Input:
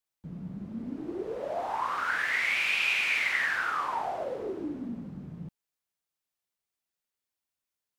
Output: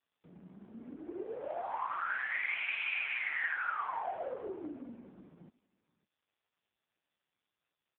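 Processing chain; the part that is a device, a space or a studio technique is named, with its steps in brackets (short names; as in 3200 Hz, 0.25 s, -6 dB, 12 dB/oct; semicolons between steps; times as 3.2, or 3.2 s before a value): 2.57–4.23 steep high-pass 330 Hz 48 dB/oct; satellite phone (BPF 360–3000 Hz; echo 0.555 s -23.5 dB; gain -2.5 dB; AMR-NB 5.15 kbps 8000 Hz)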